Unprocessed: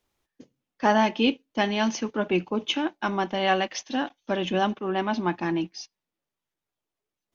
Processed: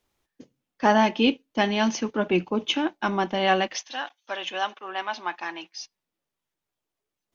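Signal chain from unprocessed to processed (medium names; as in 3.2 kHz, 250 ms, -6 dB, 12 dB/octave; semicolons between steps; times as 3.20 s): 3.78–5.81 s: high-pass 860 Hz 12 dB/octave; trim +1.5 dB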